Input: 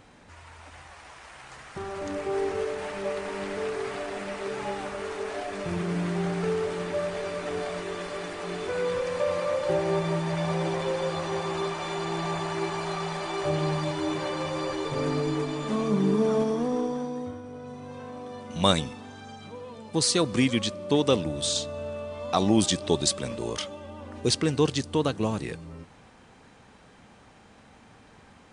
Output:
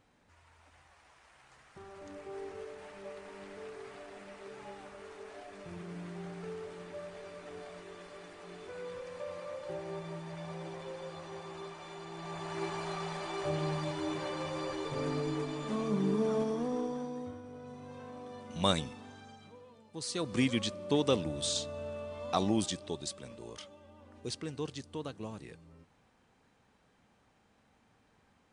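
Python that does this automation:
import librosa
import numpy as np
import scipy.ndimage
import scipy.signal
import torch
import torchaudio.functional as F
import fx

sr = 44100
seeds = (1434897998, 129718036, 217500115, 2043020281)

y = fx.gain(x, sr, db=fx.line((12.13, -15.0), (12.63, -7.0), (19.1, -7.0), (19.95, -18.0), (20.4, -6.0), (22.37, -6.0), (22.97, -15.0)))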